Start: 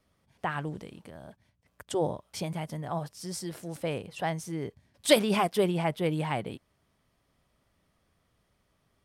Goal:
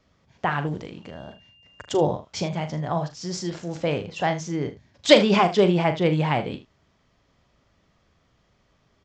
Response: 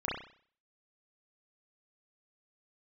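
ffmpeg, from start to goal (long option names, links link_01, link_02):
-filter_complex "[0:a]asettb=1/sr,asplit=3[link_01][link_02][link_03];[link_01]atrim=end=1.024[link_04];[link_02]atrim=start=1.02:end=2.05,asetpts=PTS-STARTPTS,afade=type=in:duration=0.004:curve=qsin,afade=type=out:start_time=1.026:duration=0.004:curve=qsin,aeval=exprs='val(0)+0.000794*sin(2*PI*2800*n/s)':channel_layout=same[link_05];[link_03]atrim=start=2.046[link_06];[link_04][link_05]acrossfade=duration=0.004:curve1=hsin:curve2=qsin[link_07];[link_07][link_06]acrossfade=duration=0.004:curve1=qsin:curve2=hsin,asplit=2[link_08][link_09];[link_09]aecho=0:1:40|77:0.316|0.168[link_10];[link_08][link_10]amix=inputs=2:normalize=0,aresample=16000,aresample=44100,volume=7dB"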